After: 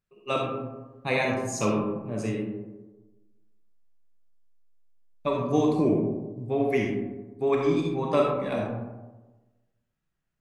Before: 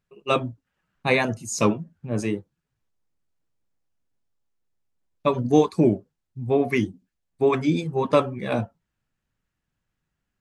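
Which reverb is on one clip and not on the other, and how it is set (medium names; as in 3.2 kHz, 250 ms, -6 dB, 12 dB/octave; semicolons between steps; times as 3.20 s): algorithmic reverb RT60 1.2 s, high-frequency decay 0.35×, pre-delay 10 ms, DRR -1 dB; trim -7 dB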